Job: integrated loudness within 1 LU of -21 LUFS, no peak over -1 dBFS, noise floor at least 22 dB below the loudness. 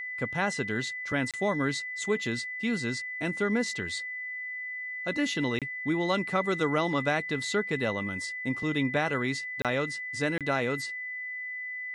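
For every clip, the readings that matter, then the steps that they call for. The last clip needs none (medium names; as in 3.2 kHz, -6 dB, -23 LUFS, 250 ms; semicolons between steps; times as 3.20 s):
dropouts 4; longest dropout 27 ms; steady tone 2 kHz; tone level -34 dBFS; loudness -30.0 LUFS; peak level -13.0 dBFS; loudness target -21.0 LUFS
-> interpolate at 1.31/5.59/9.62/10.38 s, 27 ms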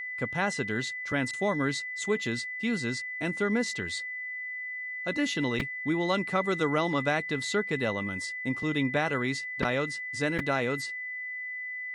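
dropouts 0; steady tone 2 kHz; tone level -34 dBFS
-> band-stop 2 kHz, Q 30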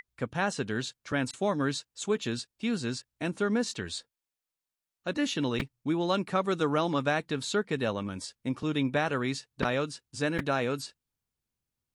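steady tone not found; loudness -31.0 LUFS; peak level -13.0 dBFS; loudness target -21.0 LUFS
-> trim +10 dB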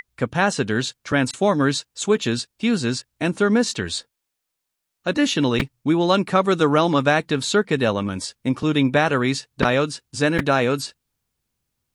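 loudness -21.0 LUFS; peak level -3.0 dBFS; noise floor -80 dBFS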